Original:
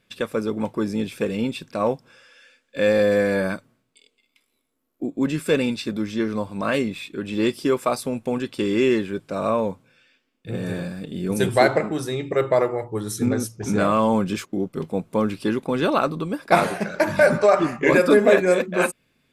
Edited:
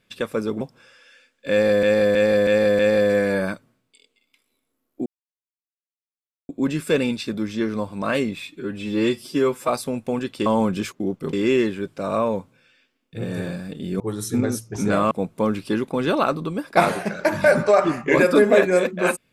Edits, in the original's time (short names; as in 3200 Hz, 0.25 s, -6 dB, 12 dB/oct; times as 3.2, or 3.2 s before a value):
0.61–1.91 cut
2.81–3.13 loop, 5 plays
5.08 insert silence 1.43 s
7.07–7.87 stretch 1.5×
11.32–12.88 cut
13.99–14.86 move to 8.65